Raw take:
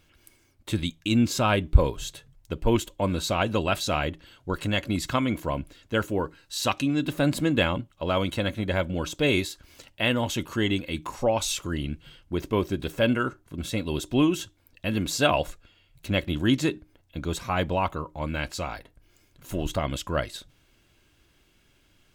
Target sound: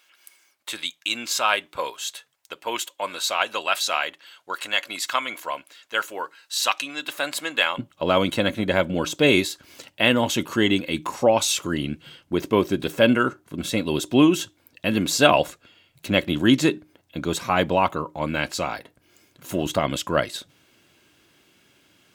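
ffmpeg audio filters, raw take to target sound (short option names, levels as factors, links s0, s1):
-af "asetnsamples=n=441:p=0,asendcmd='7.78 highpass f 160',highpass=930,volume=2"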